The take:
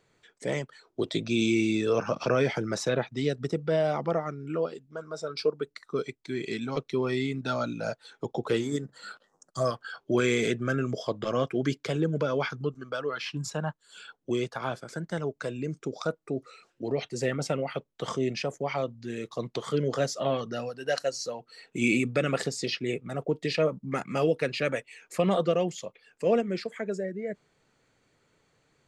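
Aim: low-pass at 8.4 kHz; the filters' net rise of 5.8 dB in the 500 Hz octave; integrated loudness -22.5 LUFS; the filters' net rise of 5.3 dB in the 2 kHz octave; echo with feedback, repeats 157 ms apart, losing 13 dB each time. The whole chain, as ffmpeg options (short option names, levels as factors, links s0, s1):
-af "lowpass=8400,equalizer=f=500:t=o:g=6.5,equalizer=f=2000:t=o:g=6.5,aecho=1:1:157|314|471:0.224|0.0493|0.0108,volume=1.41"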